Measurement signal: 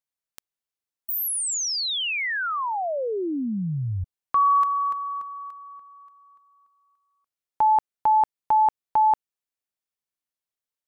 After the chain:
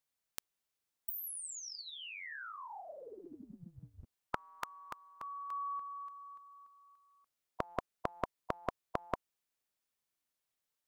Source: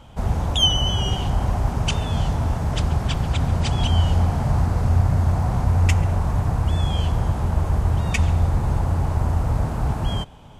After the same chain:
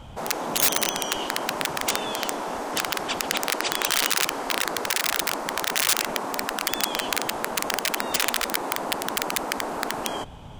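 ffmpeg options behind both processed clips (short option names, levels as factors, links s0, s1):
-af "aeval=exprs='(mod(3.98*val(0)+1,2)-1)/3.98':c=same,afftfilt=real='re*lt(hypot(re,im),0.158)':imag='im*lt(hypot(re,im),0.158)':win_size=1024:overlap=0.75,volume=1.41"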